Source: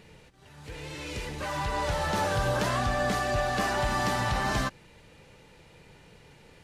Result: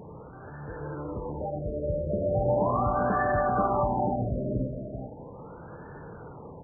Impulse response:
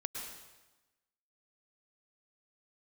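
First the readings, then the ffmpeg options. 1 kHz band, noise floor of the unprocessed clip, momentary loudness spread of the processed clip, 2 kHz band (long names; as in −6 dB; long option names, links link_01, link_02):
+1.0 dB, −56 dBFS, 19 LU, −7.5 dB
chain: -filter_complex "[0:a]aeval=exprs='val(0)+0.5*0.00944*sgn(val(0))':channel_layout=same,highpass=frequency=89:poles=1,aecho=1:1:388:0.355,asplit=2[link_01][link_02];[1:a]atrim=start_sample=2205,afade=type=out:start_time=0.31:duration=0.01,atrim=end_sample=14112[link_03];[link_02][link_03]afir=irnorm=-1:irlink=0,volume=-3.5dB[link_04];[link_01][link_04]amix=inputs=2:normalize=0,afftfilt=real='re*lt(b*sr/1024,630*pow(1800/630,0.5+0.5*sin(2*PI*0.38*pts/sr)))':imag='im*lt(b*sr/1024,630*pow(1800/630,0.5+0.5*sin(2*PI*0.38*pts/sr)))':win_size=1024:overlap=0.75,volume=-1.5dB"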